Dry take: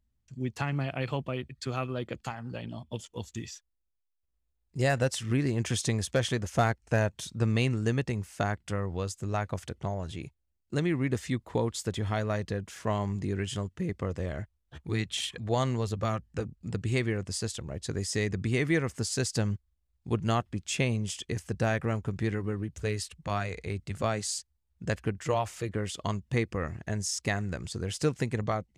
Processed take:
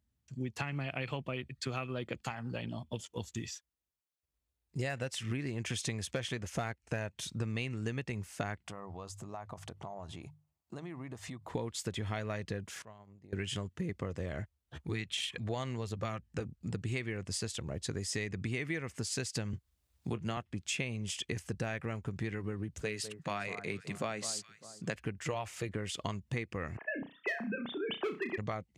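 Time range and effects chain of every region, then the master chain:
8.64–11.48 band shelf 870 Hz +9.5 dB 1.1 oct + notches 50/100/150 Hz + compressor, threshold -41 dBFS
12.82–13.33 high shelf 5800 Hz -6.5 dB + compressor 2.5:1, threshold -49 dBFS + gate -44 dBFS, range -16 dB
19.53–20.37 doubler 23 ms -14 dB + three-band squash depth 40%
22.81–24.95 HPF 130 Hz 24 dB/oct + echo with dull and thin repeats by turns 0.201 s, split 1500 Hz, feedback 50%, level -13.5 dB
26.77–28.38 sine-wave speech + overloaded stage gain 23.5 dB + flutter echo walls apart 5.7 m, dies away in 0.25 s
whole clip: HPF 67 Hz; dynamic EQ 2400 Hz, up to +7 dB, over -49 dBFS, Q 1.5; compressor, threshold -33 dBFS

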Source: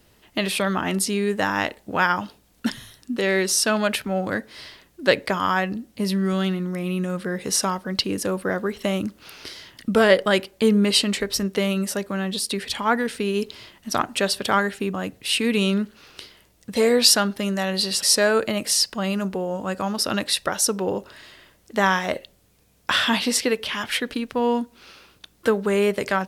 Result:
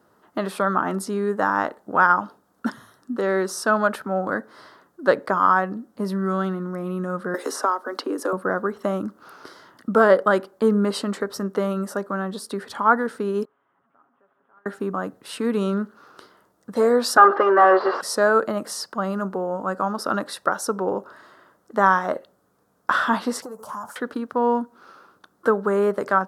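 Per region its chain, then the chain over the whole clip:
7.34–8.33 steep high-pass 250 Hz 72 dB/oct + three-band squash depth 70%
13.45–14.66 delta modulation 16 kbps, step -19.5 dBFS + gate -14 dBFS, range -42 dB + comb 7.3 ms, depth 44%
17.17–18.01 comb 2.5 ms, depth 66% + overdrive pedal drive 26 dB, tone 1900 Hz, clips at -10 dBFS + speaker cabinet 310–4000 Hz, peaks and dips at 350 Hz +4 dB, 560 Hz +9 dB, 1100 Hz +7 dB, 1800 Hz +4 dB, 3800 Hz -8 dB
23.42–23.96 sample leveller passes 1 + EQ curve 200 Hz 0 dB, 340 Hz -13 dB, 600 Hz 0 dB, 1000 Hz +3 dB, 1900 Hz -20 dB, 3600 Hz -17 dB, 6800 Hz +8 dB + compressor 12:1, threshold -31 dBFS
whole clip: HPF 190 Hz 12 dB/oct; resonant high shelf 1800 Hz -10.5 dB, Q 3

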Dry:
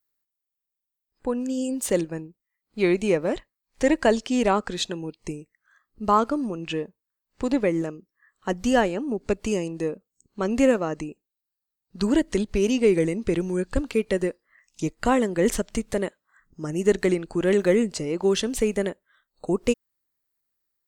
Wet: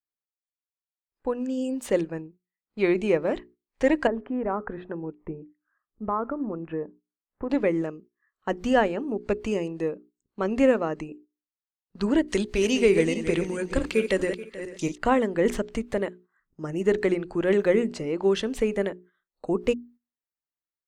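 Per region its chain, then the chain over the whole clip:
4.07–7.5 LPF 1600 Hz 24 dB/oct + compressor 3:1, threshold -24 dBFS
12.28–14.98 regenerating reverse delay 0.216 s, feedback 41%, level -8.5 dB + bell 8800 Hz +12 dB 2.9 oct
whole clip: notches 60/120/180/240/300/360/420 Hz; gate -48 dBFS, range -11 dB; tone controls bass -3 dB, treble -12 dB

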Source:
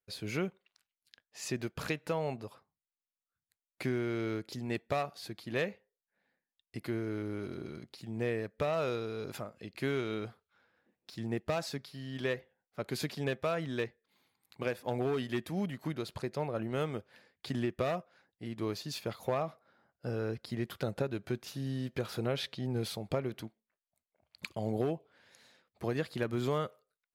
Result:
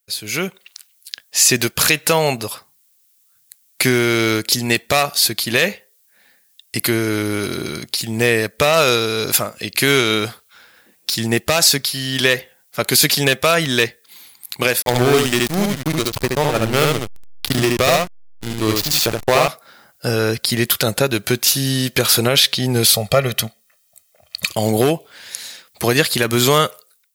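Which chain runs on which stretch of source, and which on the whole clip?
14.82–19.48 backlash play -33.5 dBFS + echo 73 ms -3 dB
22.94–24.51 high shelf 7000 Hz -5.5 dB + comb 1.6 ms, depth 78%
whole clip: pre-emphasis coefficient 0.9; AGC gain up to 14 dB; maximiser +22.5 dB; gain -1 dB

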